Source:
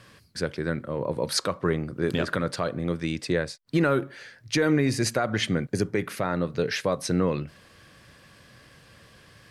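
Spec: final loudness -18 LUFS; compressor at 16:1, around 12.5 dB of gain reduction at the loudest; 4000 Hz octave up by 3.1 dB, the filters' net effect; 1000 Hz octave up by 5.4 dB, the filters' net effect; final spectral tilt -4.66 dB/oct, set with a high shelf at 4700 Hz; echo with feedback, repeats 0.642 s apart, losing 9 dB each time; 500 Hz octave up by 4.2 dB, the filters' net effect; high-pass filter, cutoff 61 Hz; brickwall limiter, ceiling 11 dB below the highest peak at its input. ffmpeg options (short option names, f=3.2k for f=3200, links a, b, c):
-af "highpass=61,equalizer=f=500:t=o:g=3.5,equalizer=f=1k:t=o:g=6.5,equalizer=f=4k:t=o:g=6.5,highshelf=f=4.7k:g=-5.5,acompressor=threshold=-28dB:ratio=16,alimiter=level_in=1.5dB:limit=-24dB:level=0:latency=1,volume=-1.5dB,aecho=1:1:642|1284|1926|2568:0.355|0.124|0.0435|0.0152,volume=19dB"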